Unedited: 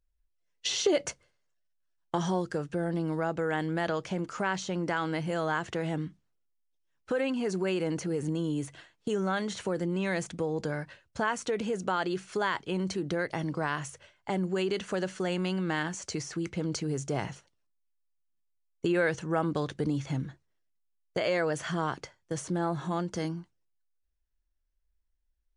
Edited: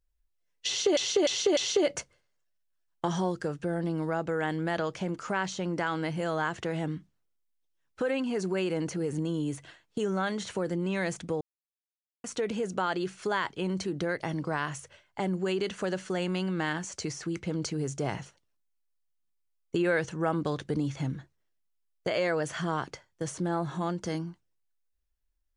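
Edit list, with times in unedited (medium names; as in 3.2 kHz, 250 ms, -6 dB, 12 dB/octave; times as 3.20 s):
0.67–0.97 s: loop, 4 plays
10.51–11.34 s: mute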